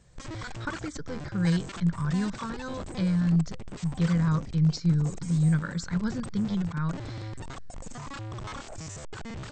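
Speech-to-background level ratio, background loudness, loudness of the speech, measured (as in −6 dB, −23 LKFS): 12.5 dB, −41.0 LKFS, −28.5 LKFS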